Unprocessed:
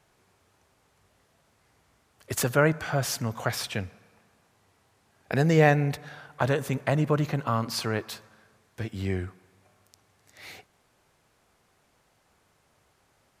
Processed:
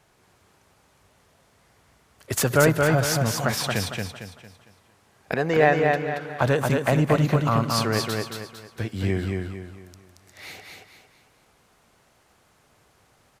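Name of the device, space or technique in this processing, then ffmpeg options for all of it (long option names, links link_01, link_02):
parallel distortion: -filter_complex "[0:a]asplit=2[link_01][link_02];[link_02]asoftclip=type=hard:threshold=-19dB,volume=-9dB[link_03];[link_01][link_03]amix=inputs=2:normalize=0,asettb=1/sr,asplit=3[link_04][link_05][link_06];[link_04]atrim=end=5.344[link_07];[link_05]atrim=start=5.34:end=6.21,asetpts=PTS-STARTPTS,afade=type=in:duration=0.004:curve=qsin,afade=type=out:start_time=0.866:duration=0.004:curve=qsin,bass=frequency=250:gain=-14,treble=frequency=4000:gain=-12[link_08];[link_06]atrim=start=6.206[link_09];[link_07][link_08]acrossfade=duration=0.004:curve1=hsin:curve2=qsin[link_10];[link_10][link_09]acrossfade=duration=0.004:curve1=qsin:curve2=hsin,aecho=1:1:227|454|681|908|1135:0.668|0.254|0.0965|0.0367|0.0139,volume=1.5dB"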